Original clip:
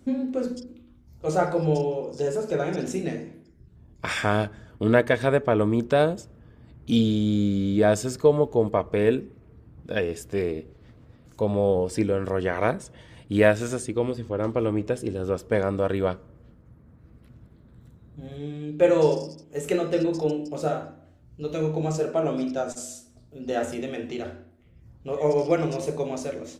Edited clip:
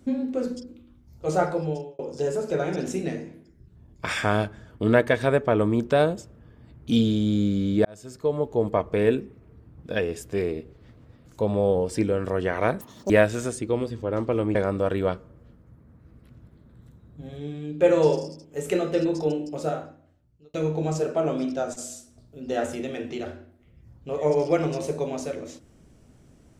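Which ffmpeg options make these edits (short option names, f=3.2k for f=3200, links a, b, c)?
-filter_complex "[0:a]asplit=7[a][b][c][d][e][f][g];[a]atrim=end=1.99,asetpts=PTS-STARTPTS,afade=t=out:st=1.43:d=0.56[h];[b]atrim=start=1.99:end=7.85,asetpts=PTS-STARTPTS,afade=t=in:d=0.004:c=hsin,afade=t=out:st=5.856:d=0.004:c=hsin[i];[c]atrim=start=7.85:end=12.814,asetpts=PTS-STARTPTS,afade=t=in:d=0.91[j];[d]atrim=start=12.81:end=13.37,asetpts=PTS-STARTPTS,asetrate=85113,aresample=44100[k];[e]atrim=start=13.366:end=14.822[l];[f]atrim=start=15.538:end=21.53,asetpts=PTS-STARTPTS,afade=t=out:st=4.982:d=1.01[m];[g]atrim=start=21.53,asetpts=PTS-STARTPTS,afade=t=in:d=0.004:c=hsin[n];[h][i][j]concat=n=3:v=0:a=1[o];[o][k]acrossfade=d=0.004:c1=hsin:c2=hsin[p];[p][l]acrossfade=d=0.004:c1=hsin:c2=hsin[q];[m][n]concat=n=2:v=0:a=1[r];[q][r]acrossfade=d=0.004:c1=hsin:c2=hsin"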